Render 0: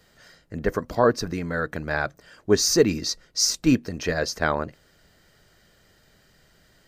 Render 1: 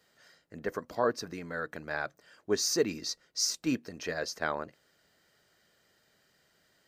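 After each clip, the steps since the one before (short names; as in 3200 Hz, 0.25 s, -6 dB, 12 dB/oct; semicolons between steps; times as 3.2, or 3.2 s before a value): HPF 290 Hz 6 dB/oct; gain -8 dB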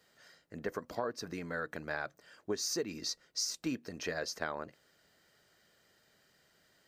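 compressor 6:1, threshold -32 dBFS, peak gain reduction 11 dB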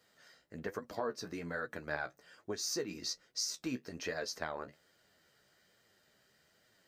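flange 1.2 Hz, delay 7.8 ms, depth 8.5 ms, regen +39%; gain +2.5 dB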